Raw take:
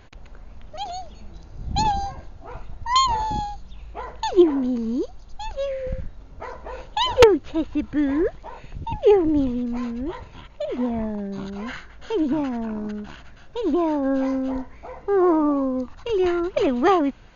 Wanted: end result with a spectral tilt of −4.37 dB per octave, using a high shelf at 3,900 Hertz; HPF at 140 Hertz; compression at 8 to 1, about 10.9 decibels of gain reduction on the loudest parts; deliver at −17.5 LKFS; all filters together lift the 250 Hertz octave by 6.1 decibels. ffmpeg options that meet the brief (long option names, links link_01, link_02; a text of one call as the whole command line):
ffmpeg -i in.wav -af "highpass=140,equalizer=frequency=250:width_type=o:gain=8,highshelf=frequency=3900:gain=7,acompressor=threshold=-16dB:ratio=8,volume=5dB" out.wav